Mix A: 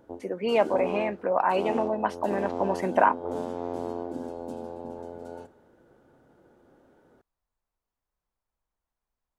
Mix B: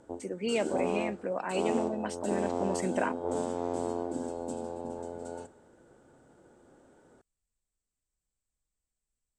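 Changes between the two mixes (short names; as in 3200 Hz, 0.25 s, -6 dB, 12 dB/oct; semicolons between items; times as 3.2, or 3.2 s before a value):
speech: add bell 930 Hz -14.5 dB 1.6 oct; master: add synth low-pass 8000 Hz, resonance Q 7.7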